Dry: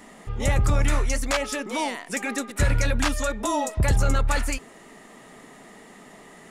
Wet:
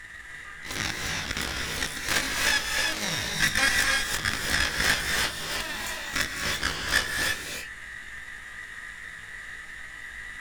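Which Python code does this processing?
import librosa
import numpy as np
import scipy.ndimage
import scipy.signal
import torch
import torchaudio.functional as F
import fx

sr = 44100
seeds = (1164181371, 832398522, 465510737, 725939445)

y = 10.0 ** (-26.5 / 20.0) * np.tanh(x / 10.0 ** (-26.5 / 20.0))
y = fx.highpass_res(y, sr, hz=1700.0, q=6.3)
y = fx.cheby_harmonics(y, sr, harmonics=(4, 6, 7, 8), levels_db=(-12, -20, -11, -19), full_scale_db=-12.5)
y = fx.dmg_noise_colour(y, sr, seeds[0], colour='brown', level_db=-52.0)
y = fx.stretch_grains(y, sr, factor=1.6, grain_ms=101.0)
y = fx.rev_gated(y, sr, seeds[1], gate_ms=360, shape='rising', drr_db=-0.5)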